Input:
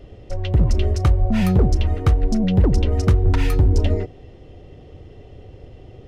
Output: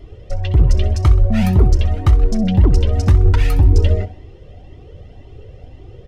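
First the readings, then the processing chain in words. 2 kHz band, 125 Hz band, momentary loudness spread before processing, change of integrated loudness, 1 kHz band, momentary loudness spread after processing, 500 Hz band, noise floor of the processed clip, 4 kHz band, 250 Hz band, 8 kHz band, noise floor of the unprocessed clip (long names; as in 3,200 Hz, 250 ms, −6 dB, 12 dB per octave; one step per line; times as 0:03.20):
+1.5 dB, +4.0 dB, 6 LU, +4.0 dB, +1.5 dB, 5 LU, +0.5 dB, −41 dBFS, +2.0 dB, +1.0 dB, can't be measured, −44 dBFS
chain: on a send: repeating echo 64 ms, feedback 46%, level −14.5 dB
on the sum: flanger whose copies keep moving one way rising 1.9 Hz
level +6 dB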